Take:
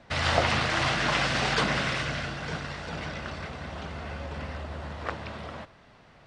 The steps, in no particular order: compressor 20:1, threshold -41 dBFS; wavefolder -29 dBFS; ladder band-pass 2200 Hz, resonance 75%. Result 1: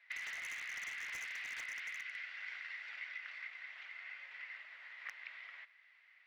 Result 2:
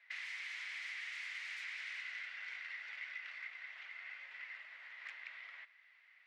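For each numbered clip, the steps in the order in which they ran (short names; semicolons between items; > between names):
ladder band-pass > wavefolder > compressor; wavefolder > ladder band-pass > compressor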